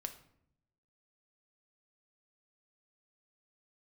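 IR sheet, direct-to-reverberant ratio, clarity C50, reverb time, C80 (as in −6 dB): 6.5 dB, 12.0 dB, 0.70 s, 15.5 dB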